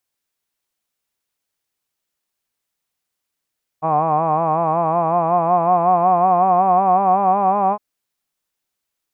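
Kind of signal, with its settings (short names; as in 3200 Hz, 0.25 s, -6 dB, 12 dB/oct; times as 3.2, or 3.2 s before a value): formant-synthesis vowel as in hod, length 3.96 s, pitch 154 Hz, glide +4.5 st, vibrato 5.4 Hz, vibrato depth 0.8 st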